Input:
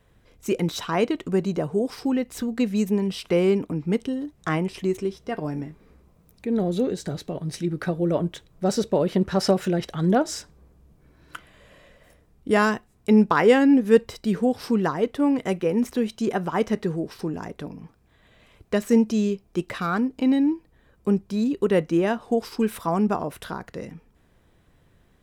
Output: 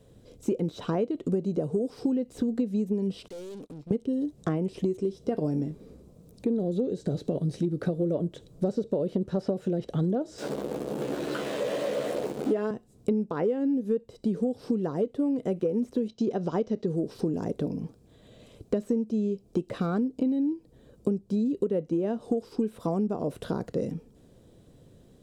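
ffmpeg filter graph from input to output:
-filter_complex "[0:a]asettb=1/sr,asplit=3[a][b][c];[a]atrim=end=3.284[d];[b]atrim=start=3.28:end=3.91,asetpts=PTS-STARTPTS,afade=t=in:d=0.004:c=qsin,afade=t=out:st=0.626:d=0.004:c=qsin,equalizer=f=190:w=0.32:g=-13,agate=range=-33dB:threshold=-45dB:ratio=3:release=100:detection=peak,aeval=exprs='(tanh(200*val(0)+0.55)-tanh(0.55))/200':c=same[e];[c]atrim=start=3.906[f];[d][e]acrossfade=d=0.004:c1=hsin:c2=qsin[g];[g][f]acrossfade=d=0.004:c1=qsin:c2=hsin,asettb=1/sr,asplit=3[h][i][j];[h]atrim=end=10.384[k];[i]atrim=start=10.38:end=12.71,asetpts=PTS-STARTPTS,afade=t=in:d=0.004:c=qsin,afade=t=out:st=2.326:d=0.004:c=qsin,aeval=exprs='val(0)+0.5*0.0501*sgn(val(0))':c=same,highpass=320,asplit=2[l][m];[m]adelay=14,volume=-5dB[n];[l][n]amix=inputs=2:normalize=0,atrim=end_sample=102753[o];[j]atrim=start=12.706[p];[k][o]acrossfade=d=0.004:c1=hsin:c2=qsin[q];[q][p]acrossfade=d=0.004:c1=qsin:c2=hsin,asettb=1/sr,asplit=3[r][s][t];[r]atrim=end=16.084[u];[s]atrim=start=16.08:end=16.86,asetpts=PTS-STARTPTS,afade=t=in:d=0.004:c=qsin,afade=t=out:st=0.776:d=0.004:c=qsin,lowpass=f=5.5k:w=0.5412,lowpass=f=5.5k:w=1.3066,bass=f=250:g=-1,treble=f=4k:g=14,agate=range=-8dB:threshold=-41dB:ratio=16:release=100:detection=peak[v];[t]atrim=start=16.856[w];[u][v]acrossfade=d=0.004:c1=hsin:c2=qsin[x];[x][w]acrossfade=d=0.004:c1=qsin:c2=hsin,acrossover=split=2700[y][z];[z]acompressor=threshold=-52dB:ratio=4:attack=1:release=60[aa];[y][aa]amix=inputs=2:normalize=0,equalizer=f=125:t=o:w=1:g=7,equalizer=f=250:t=o:w=1:g=7,equalizer=f=500:t=o:w=1:g=10,equalizer=f=1k:t=o:w=1:g=-4,equalizer=f=2k:t=o:w=1:g=-8,equalizer=f=4k:t=o:w=1:g=5,equalizer=f=8k:t=o:w=1:g=7,acompressor=threshold=-22dB:ratio=16,volume=-1.5dB"

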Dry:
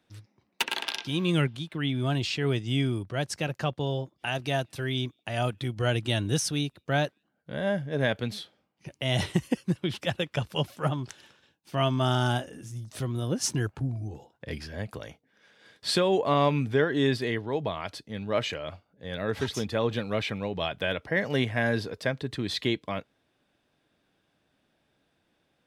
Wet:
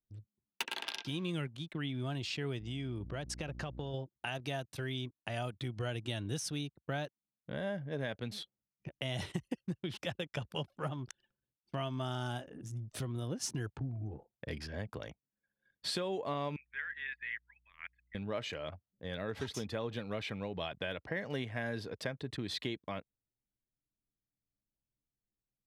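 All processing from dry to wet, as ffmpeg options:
-filter_complex "[0:a]asettb=1/sr,asplit=3[a][b][c];[a]atrim=end=2.604[d];[b]atrim=start=2.6:end=3.94,asetpts=PTS-STARTPTS,afade=t=in:d=0.004:c=qsin,afade=t=out:st=1.336:d=0.004:c=qsin,lowpass=11k,aeval=exprs='val(0)+0.00794*(sin(2*PI*60*n/s)+sin(2*PI*2*60*n/s)/2+sin(2*PI*3*60*n/s)/3+sin(2*PI*4*60*n/s)/4+sin(2*PI*5*60*n/s)/5)':c=same,acompressor=threshold=-30dB:ratio=3:attack=3.2:release=140:knee=1:detection=peak[e];[c]atrim=start=3.936[f];[d][e]acrossfade=d=0.004:c1=hsin:c2=qsin[g];[g][f]acrossfade=d=0.004:c1=qsin:c2=hsin,asettb=1/sr,asplit=3[h][i][j];[h]atrim=end=16.564[k];[i]atrim=start=16.56:end=18.15,asetpts=PTS-STARTPTS,afade=t=in:d=0.004:c=qsin,afade=t=out:st=1.586:d=0.004:c=qsin,asuperpass=centerf=2000:order=4:qfactor=2.2,aeval=exprs='val(0)+0.000708*(sin(2*PI*60*n/s)+sin(2*PI*2*60*n/s)/2+sin(2*PI*3*60*n/s)/3+sin(2*PI*4*60*n/s)/4+sin(2*PI*5*60*n/s)/5)':c=same[l];[j]atrim=start=18.146[m];[k][l]acrossfade=d=0.004:c1=hsin:c2=qsin[n];[n][m]acrossfade=d=0.004:c1=qsin:c2=hsin,anlmdn=0.0398,acompressor=threshold=-34dB:ratio=3,volume=-2.5dB"

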